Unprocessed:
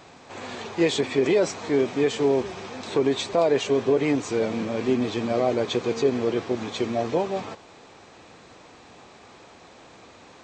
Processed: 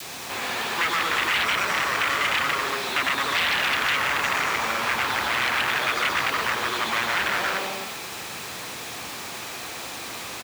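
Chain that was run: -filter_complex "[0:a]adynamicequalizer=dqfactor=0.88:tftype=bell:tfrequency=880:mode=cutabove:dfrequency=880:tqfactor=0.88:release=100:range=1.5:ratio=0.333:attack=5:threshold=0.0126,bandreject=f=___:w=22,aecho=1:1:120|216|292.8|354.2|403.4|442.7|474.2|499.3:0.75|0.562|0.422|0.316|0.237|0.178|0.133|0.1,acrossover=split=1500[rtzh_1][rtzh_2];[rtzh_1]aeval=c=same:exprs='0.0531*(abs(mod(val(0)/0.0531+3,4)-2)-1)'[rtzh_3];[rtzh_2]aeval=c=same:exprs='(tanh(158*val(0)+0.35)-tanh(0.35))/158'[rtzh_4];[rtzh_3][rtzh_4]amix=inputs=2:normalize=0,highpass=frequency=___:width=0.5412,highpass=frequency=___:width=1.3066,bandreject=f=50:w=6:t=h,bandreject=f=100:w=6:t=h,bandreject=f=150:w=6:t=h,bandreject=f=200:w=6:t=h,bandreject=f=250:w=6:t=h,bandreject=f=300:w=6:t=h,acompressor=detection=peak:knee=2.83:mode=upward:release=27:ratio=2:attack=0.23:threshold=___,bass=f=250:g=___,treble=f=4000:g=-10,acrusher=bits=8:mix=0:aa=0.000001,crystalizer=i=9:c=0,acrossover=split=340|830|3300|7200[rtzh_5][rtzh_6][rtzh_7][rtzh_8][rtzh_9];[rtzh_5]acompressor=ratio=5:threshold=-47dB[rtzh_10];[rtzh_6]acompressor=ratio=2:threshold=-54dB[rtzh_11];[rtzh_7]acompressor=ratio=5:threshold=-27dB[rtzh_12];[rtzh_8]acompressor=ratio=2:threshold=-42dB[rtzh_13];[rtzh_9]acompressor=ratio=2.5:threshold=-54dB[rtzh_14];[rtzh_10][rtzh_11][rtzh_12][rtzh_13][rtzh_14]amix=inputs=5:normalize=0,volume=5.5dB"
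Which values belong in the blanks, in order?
6200, 56, 56, -46dB, 1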